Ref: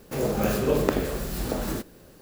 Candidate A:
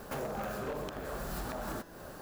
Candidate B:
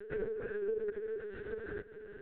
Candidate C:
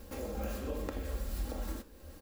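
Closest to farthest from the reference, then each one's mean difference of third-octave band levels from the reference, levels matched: C, A, B; 4.5 dB, 6.5 dB, 15.5 dB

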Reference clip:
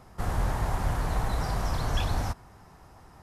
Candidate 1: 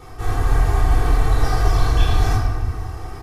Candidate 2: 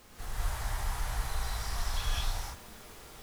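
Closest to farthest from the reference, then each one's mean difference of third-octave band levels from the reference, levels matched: 1, 2; 5.0 dB, 10.0 dB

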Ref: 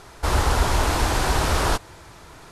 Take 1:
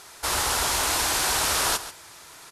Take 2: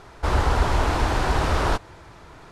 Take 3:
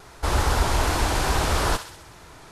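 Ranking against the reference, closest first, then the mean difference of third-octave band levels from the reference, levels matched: 3, 2, 1; 1.0 dB, 3.0 dB, 6.5 dB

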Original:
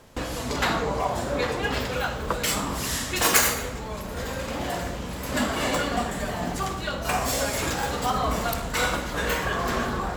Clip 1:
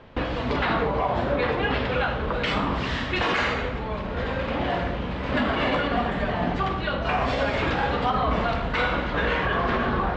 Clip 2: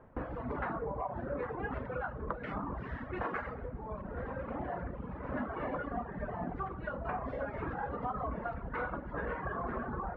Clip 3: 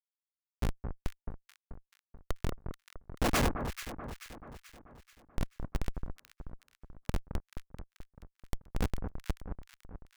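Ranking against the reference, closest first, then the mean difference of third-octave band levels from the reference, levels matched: 1, 2, 3; 8.0 dB, 13.5 dB, 20.0 dB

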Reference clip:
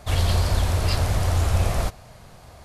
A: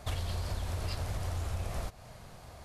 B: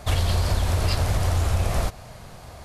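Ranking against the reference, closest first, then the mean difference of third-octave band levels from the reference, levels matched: B, A; 2.0 dB, 3.5 dB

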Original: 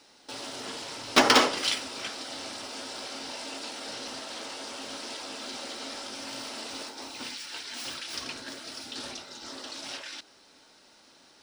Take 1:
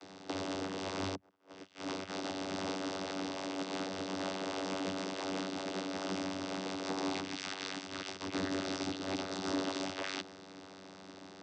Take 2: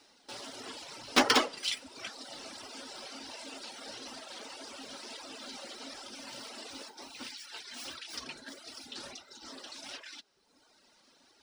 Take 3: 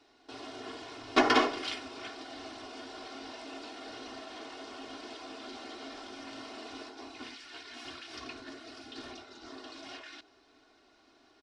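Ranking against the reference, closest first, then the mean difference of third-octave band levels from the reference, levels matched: 2, 3, 1; 3.0 dB, 5.5 dB, 10.5 dB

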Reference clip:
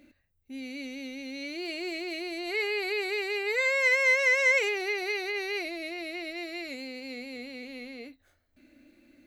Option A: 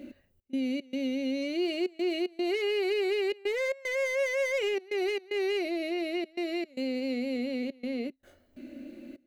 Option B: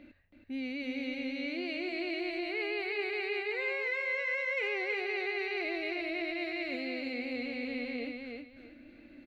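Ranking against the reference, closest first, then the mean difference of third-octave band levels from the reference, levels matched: A, B; 5.0 dB, 6.5 dB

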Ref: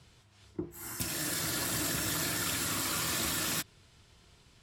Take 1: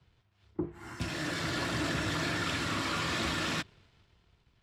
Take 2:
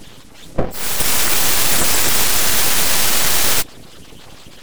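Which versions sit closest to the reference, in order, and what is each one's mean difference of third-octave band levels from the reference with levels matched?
2, 1; 4.5 dB, 6.5 dB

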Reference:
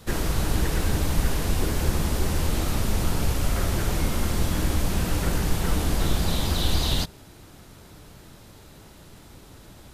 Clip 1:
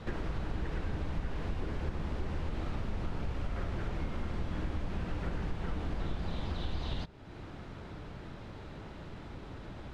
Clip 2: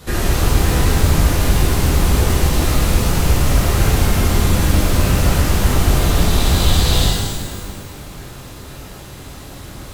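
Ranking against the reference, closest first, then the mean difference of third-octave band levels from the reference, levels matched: 2, 1; 3.0 dB, 8.5 dB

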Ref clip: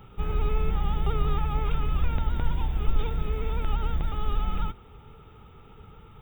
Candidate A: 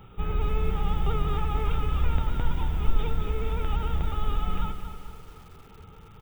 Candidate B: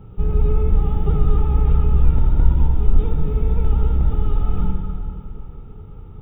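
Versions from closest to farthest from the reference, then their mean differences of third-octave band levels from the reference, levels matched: A, B; 4.0 dB, 7.5 dB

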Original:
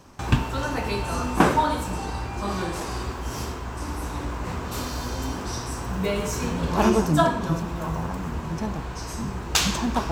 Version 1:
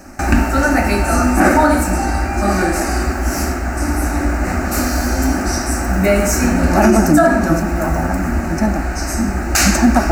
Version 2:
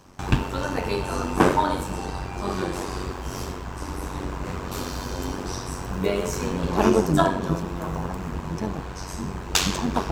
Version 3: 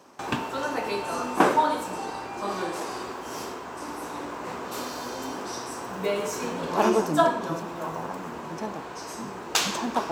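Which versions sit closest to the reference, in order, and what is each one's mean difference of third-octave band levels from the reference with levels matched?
2, 3, 1; 1.5 dB, 3.0 dB, 4.5 dB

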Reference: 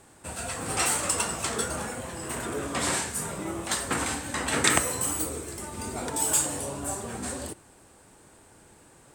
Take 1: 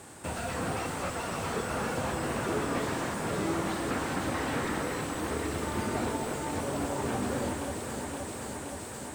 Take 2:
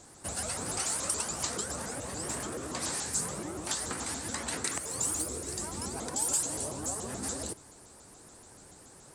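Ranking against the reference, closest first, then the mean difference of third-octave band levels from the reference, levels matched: 2, 1; 4.0 dB, 7.5 dB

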